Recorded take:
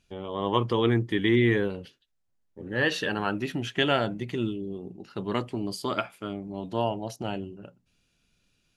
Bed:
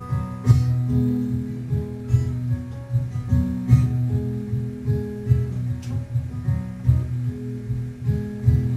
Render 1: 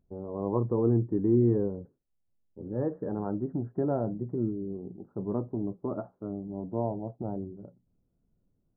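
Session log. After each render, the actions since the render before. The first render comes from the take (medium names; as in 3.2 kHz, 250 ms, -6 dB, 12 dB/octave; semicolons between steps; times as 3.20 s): Gaussian low-pass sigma 11 samples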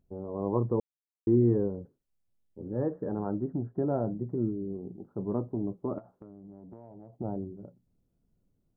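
0.80–1.27 s: mute; 3.50–3.94 s: distance through air 400 m; 5.98–7.13 s: compression 16:1, threshold -43 dBFS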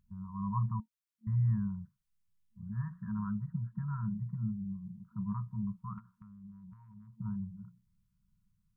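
FFT band-reject 220–930 Hz; dynamic bell 530 Hz, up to +5 dB, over -55 dBFS, Q 1.3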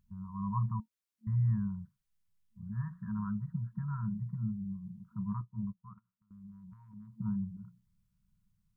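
5.41–6.31 s: upward expansion 2.5:1, over -48 dBFS; 6.93–7.57 s: small resonant body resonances 260/460 Hz, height 11 dB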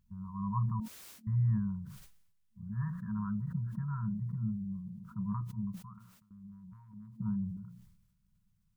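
decay stretcher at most 57 dB/s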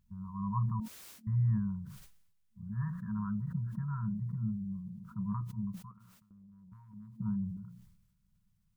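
5.91–6.72 s: compression, threshold -54 dBFS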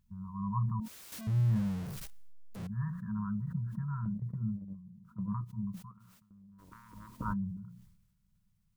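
1.12–2.67 s: jump at every zero crossing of -39 dBFS; 4.05–5.53 s: gate -38 dBFS, range -8 dB; 6.58–7.32 s: spectral peaks clipped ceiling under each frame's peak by 30 dB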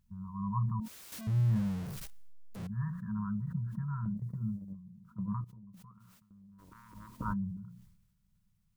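4.17–4.72 s: tone controls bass -1 dB, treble +8 dB; 5.44–6.95 s: compression 16:1, threshold -49 dBFS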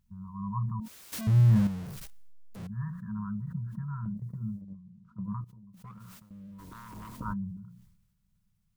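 1.13–1.67 s: gain +7.5 dB; 4.61–5.24 s: distance through air 74 m; 5.84–7.20 s: waveshaping leveller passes 3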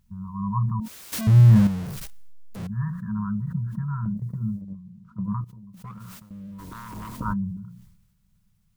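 trim +7.5 dB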